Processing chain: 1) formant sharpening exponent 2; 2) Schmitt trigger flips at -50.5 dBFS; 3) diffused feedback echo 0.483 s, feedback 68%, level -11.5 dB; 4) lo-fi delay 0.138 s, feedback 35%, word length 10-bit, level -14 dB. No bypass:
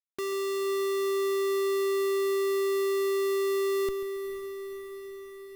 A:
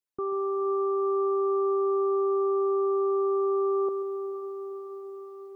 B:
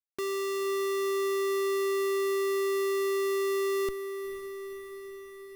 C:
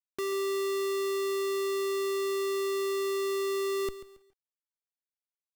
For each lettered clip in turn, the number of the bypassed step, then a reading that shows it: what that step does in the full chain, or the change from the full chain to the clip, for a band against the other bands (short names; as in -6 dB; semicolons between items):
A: 2, distortion -8 dB; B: 4, 500 Hz band -2.0 dB; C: 3, crest factor change -3.0 dB